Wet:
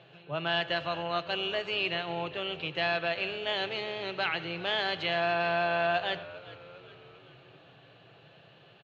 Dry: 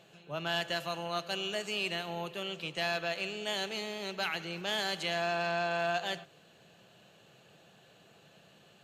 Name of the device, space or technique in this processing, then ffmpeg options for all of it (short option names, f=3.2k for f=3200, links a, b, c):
frequency-shifting delay pedal into a guitar cabinet: -filter_complex "[0:a]asplit=6[a][b][c][d][e][f];[b]adelay=400,afreqshift=-79,volume=-18dB[g];[c]adelay=800,afreqshift=-158,volume=-23.4dB[h];[d]adelay=1200,afreqshift=-237,volume=-28.7dB[i];[e]adelay=1600,afreqshift=-316,volume=-34.1dB[j];[f]adelay=2000,afreqshift=-395,volume=-39.4dB[k];[a][g][h][i][j][k]amix=inputs=6:normalize=0,highpass=75,equalizer=f=75:t=q:w=4:g=-5,equalizer=f=120:t=q:w=4:g=9,equalizer=f=210:t=q:w=4:g=-10,lowpass=f=3.8k:w=0.5412,lowpass=f=3.8k:w=1.3066,volume=4dB"